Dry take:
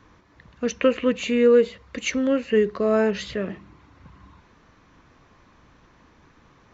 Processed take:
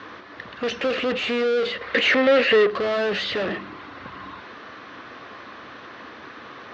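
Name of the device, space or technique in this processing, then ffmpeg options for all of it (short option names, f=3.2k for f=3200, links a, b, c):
overdrive pedal into a guitar cabinet: -filter_complex "[0:a]asplit=2[a][b];[b]highpass=f=720:p=1,volume=36dB,asoftclip=type=tanh:threshold=-8dB[c];[a][c]amix=inputs=2:normalize=0,lowpass=f=3.9k:p=1,volume=-6dB,highpass=87,equalizer=f=160:t=q:w=4:g=-9,equalizer=f=920:t=q:w=4:g=-7,equalizer=f=2.3k:t=q:w=4:g=-4,lowpass=f=4.6k:w=0.5412,lowpass=f=4.6k:w=1.3066,asettb=1/sr,asplit=3[d][e][f];[d]atrim=end=1.814[g];[e]atrim=start=1.81:end=2.67,asetpts=PTS-STARTPTS,afade=t=in:d=0.004:c=qsin,afade=t=out:st=0.856:d=0.004:c=qsin,equalizer=f=500:t=o:w=1:g=8,equalizer=f=2k:t=o:w=1:g=10,equalizer=f=4k:t=o:w=1:g=3[h];[f]atrim=start=2.666[i];[g][h]acrossfade=d=0.004:c1=hsin:c2=qsin[j];[j][i]acrossfade=d=0.004:c1=qsin:c2=hsin,volume=-8dB"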